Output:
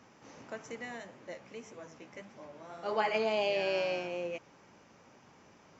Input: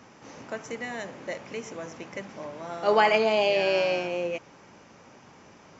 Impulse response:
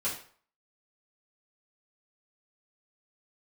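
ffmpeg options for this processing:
-filter_complex "[0:a]asplit=3[link_01][link_02][link_03];[link_01]afade=type=out:start_time=0.97:duration=0.02[link_04];[link_02]flanger=delay=7.5:depth=8.8:regen=23:speed=1.7:shape=triangular,afade=type=in:start_time=0.97:duration=0.02,afade=type=out:start_time=3.14:duration=0.02[link_05];[link_03]afade=type=in:start_time=3.14:duration=0.02[link_06];[link_04][link_05][link_06]amix=inputs=3:normalize=0,volume=-7.5dB"

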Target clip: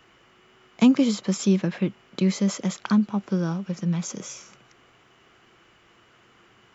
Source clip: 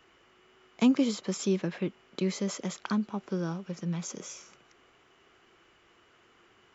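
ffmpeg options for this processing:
ffmpeg -i in.wav -af "equalizer=frequency=125:width_type=o:width=0.33:gain=8,equalizer=frequency=200:width_type=o:width=0.33:gain=5,equalizer=frequency=400:width_type=o:width=0.33:gain=-3,volume=5dB" out.wav

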